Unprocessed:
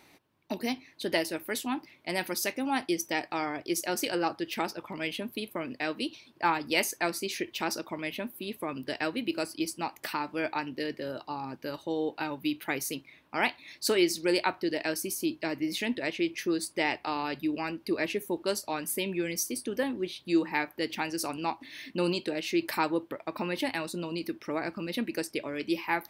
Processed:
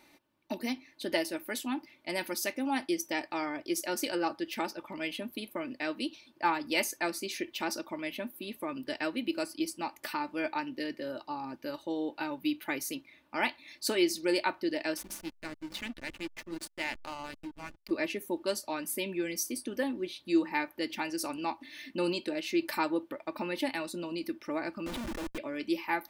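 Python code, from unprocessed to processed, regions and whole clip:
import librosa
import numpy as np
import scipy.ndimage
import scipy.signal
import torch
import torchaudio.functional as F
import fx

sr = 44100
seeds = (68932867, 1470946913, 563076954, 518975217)

y = fx.chain(x, sr, fx.peak_eq(hz=480.0, db=-10.5, octaves=1.6),
    fx.hum_notches(base_hz=50, count=7),
    fx.backlash(play_db=-30.0), at=(14.97, 17.91))
y = fx.chain(y, sr, fx.air_absorb(metres=280.0),
    fx.schmitt(flips_db=-44.5),
    fx.doppler_dist(depth_ms=0.15), at=(24.86, 25.38))
y = fx.peak_eq(y, sr, hz=89.0, db=-7.0, octaves=0.32)
y = y + 0.44 * np.pad(y, (int(3.4 * sr / 1000.0), 0))[:len(y)]
y = F.gain(torch.from_numpy(y), -3.5).numpy()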